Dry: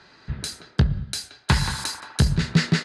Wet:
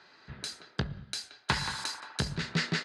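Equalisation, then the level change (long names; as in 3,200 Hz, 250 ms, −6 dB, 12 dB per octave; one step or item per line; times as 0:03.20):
RIAA equalisation recording
head-to-tape spacing loss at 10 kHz 23 dB
−3.0 dB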